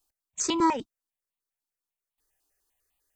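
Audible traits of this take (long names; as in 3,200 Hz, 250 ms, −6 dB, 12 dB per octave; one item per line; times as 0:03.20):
notches that jump at a steady rate 10 Hz 510–1,600 Hz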